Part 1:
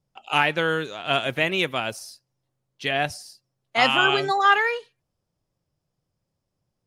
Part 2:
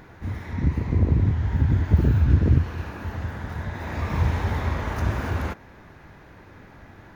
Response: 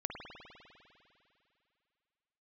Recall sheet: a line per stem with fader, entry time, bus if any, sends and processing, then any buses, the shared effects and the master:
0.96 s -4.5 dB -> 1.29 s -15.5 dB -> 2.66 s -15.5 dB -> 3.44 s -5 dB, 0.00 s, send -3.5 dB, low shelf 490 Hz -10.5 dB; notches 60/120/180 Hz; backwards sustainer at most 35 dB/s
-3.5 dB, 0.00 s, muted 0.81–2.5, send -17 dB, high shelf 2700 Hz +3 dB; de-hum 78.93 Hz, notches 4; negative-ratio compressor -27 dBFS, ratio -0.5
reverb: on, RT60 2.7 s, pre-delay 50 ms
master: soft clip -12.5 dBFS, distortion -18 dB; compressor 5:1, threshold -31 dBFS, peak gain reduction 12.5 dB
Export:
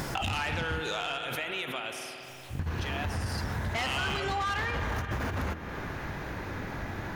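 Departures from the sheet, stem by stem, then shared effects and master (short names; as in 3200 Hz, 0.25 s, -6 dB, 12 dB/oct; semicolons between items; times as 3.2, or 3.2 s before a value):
stem 1 -4.5 dB -> +2.5 dB; stem 2 -3.5 dB -> +5.5 dB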